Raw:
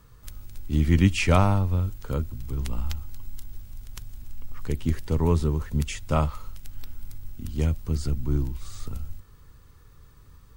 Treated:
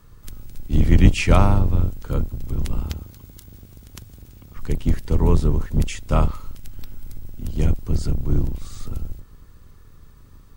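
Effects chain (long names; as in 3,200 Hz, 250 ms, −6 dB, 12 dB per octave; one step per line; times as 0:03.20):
sub-octave generator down 2 octaves, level +4 dB
0:02.85–0:04.57: high-pass filter 60 Hz
level +2 dB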